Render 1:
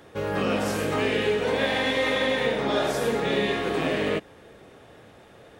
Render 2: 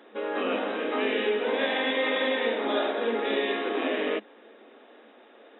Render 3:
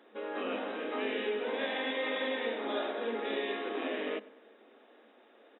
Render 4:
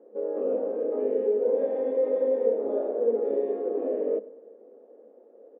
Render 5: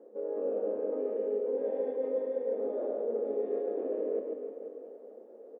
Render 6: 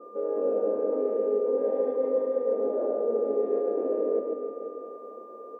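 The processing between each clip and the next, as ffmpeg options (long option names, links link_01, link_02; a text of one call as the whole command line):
ffmpeg -i in.wav -af "afftfilt=real='re*between(b*sr/4096,210,3900)':imag='im*between(b*sr/4096,210,3900)':win_size=4096:overlap=0.75,volume=-2dB" out.wav
ffmpeg -i in.wav -filter_complex "[0:a]asplit=2[link_01][link_02];[link_02]adelay=100,lowpass=frequency=2000:poles=1,volume=-18.5dB,asplit=2[link_03][link_04];[link_04]adelay=100,lowpass=frequency=2000:poles=1,volume=0.54,asplit=2[link_05][link_06];[link_06]adelay=100,lowpass=frequency=2000:poles=1,volume=0.54,asplit=2[link_07][link_08];[link_08]adelay=100,lowpass=frequency=2000:poles=1,volume=0.54,asplit=2[link_09][link_10];[link_10]adelay=100,lowpass=frequency=2000:poles=1,volume=0.54[link_11];[link_01][link_03][link_05][link_07][link_09][link_11]amix=inputs=6:normalize=0,volume=-7.5dB" out.wav
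ffmpeg -i in.wav -af "lowpass=frequency=500:width_type=q:width=4.9" out.wav
ffmpeg -i in.wav -af "areverse,acompressor=threshold=-32dB:ratio=6,areverse,aecho=1:1:140|301|486.2|699.1|943.9:0.631|0.398|0.251|0.158|0.1" out.wav
ffmpeg -i in.wav -af "aeval=exprs='val(0)+0.00251*sin(2*PI*1200*n/s)':channel_layout=same,adynamicequalizer=threshold=0.00282:dfrequency=1800:dqfactor=0.7:tfrequency=1800:tqfactor=0.7:attack=5:release=100:ratio=0.375:range=3.5:mode=cutabove:tftype=highshelf,volume=6dB" out.wav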